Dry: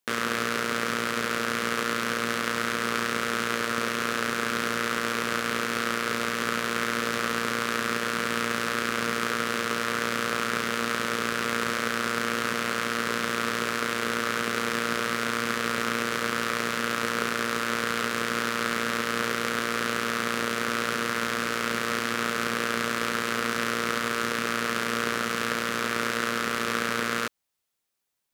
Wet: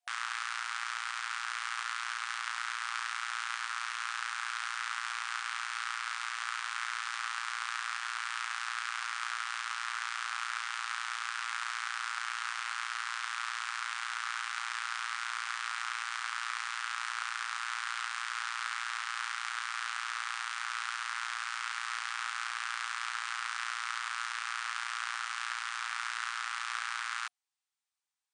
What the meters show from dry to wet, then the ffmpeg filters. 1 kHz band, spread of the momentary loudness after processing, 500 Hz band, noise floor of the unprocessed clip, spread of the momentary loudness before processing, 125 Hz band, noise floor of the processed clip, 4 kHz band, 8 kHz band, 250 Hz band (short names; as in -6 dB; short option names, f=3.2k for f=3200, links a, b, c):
-7.5 dB, 0 LU, under -40 dB, -31 dBFS, 0 LU, under -40 dB, -40 dBFS, -7.5 dB, -8.0 dB, under -40 dB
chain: -af "afftfilt=real='re*between(b*sr/4096,720,9700)':imag='im*between(b*sr/4096,720,9700)':win_size=4096:overlap=0.75,volume=-7.5dB"